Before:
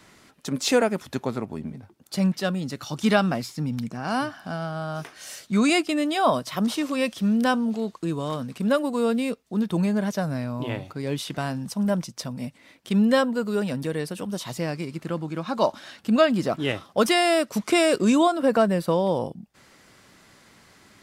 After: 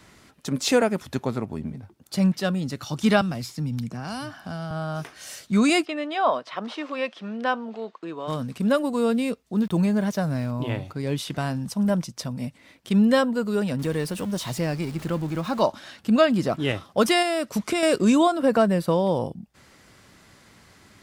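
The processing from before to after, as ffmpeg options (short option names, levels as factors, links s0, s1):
-filter_complex "[0:a]asettb=1/sr,asplit=3[s0][s1][s2];[s0]atrim=end=3.214[s3];[s1]atrim=start=3.21:end=4.71,asetpts=PTS-STARTPTS,afade=t=in:d=0.004:c=qsin,afade=t=out:st=1.496:d=0.004:c=qsin,acrossover=split=150|3000[s4][s5][s6];[s5]acompressor=threshold=0.0224:ratio=3:attack=3.2:release=140:knee=2.83:detection=peak[s7];[s4][s7][s6]amix=inputs=3:normalize=0[s8];[s2]atrim=start=4.706[s9];[s3][s8]acrossfade=d=0.004:c1=hsin:c2=qsin[s10];[s10][s9]acrossfade=d=0.004:c1=qsin:c2=hsin,asplit=3[s11][s12][s13];[s11]afade=t=out:st=5.84:d=0.02[s14];[s12]highpass=460,lowpass=2900,afade=t=in:st=5.84:d=0.02,afade=t=out:st=8.27:d=0.02[s15];[s13]afade=t=in:st=8.27:d=0.02[s16];[s14][s15][s16]amix=inputs=3:normalize=0,asettb=1/sr,asplit=3[s17][s18][s19];[s17]atrim=end=9.574[s20];[s18]atrim=start=9.57:end=10.51,asetpts=PTS-STARTPTS,afade=t=in:d=0.004:c=qsin,afade=t=out:st=0.936:d=0.004:c=qsin,aeval=exprs='val(0)*gte(abs(val(0)),0.00596)':c=same[s21];[s19]atrim=start=10.506[s22];[s20][s21]acrossfade=d=0.004:c1=hsin:c2=qsin[s23];[s23][s22]acrossfade=d=0.004:c1=qsin:c2=hsin,asettb=1/sr,asplit=3[s24][s25][s26];[s24]atrim=end=13.794[s27];[s25]atrim=start=13.79:end=15.62,asetpts=PTS-STARTPTS,afade=t=in:d=0.004:c=qsin,afade=t=out:st=1.826:d=0.004:c=qsin,aeval=exprs='val(0)+0.5*0.0141*sgn(val(0))':c=same[s28];[s26]atrim=start=15.616[s29];[s27][s28]acrossfade=d=0.004:c1=hsin:c2=qsin[s30];[s30][s29]acrossfade=d=0.004:c1=qsin:c2=hsin,asettb=1/sr,asplit=3[s31][s32][s33];[s31]atrim=end=17.224[s34];[s32]atrim=start=17.22:end=17.83,asetpts=PTS-STARTPTS,afade=t=in:d=0.004:c=qsin,afade=t=out:st=0.606:d=0.004:c=qsin,acompressor=threshold=0.1:ratio=6:attack=3.2:release=140:knee=1:detection=peak[s35];[s33]atrim=start=17.826[s36];[s34][s35]acrossfade=d=0.004:c1=hsin:c2=qsin[s37];[s37][s36]acrossfade=d=0.004:c1=qsin:c2=hsin,equalizer=f=64:t=o:w=2:g=7"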